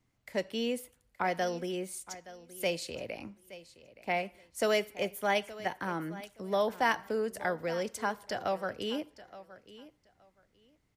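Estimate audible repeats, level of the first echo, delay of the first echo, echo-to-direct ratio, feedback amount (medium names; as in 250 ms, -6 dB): 2, -17.0 dB, 871 ms, -17.0 dB, 18%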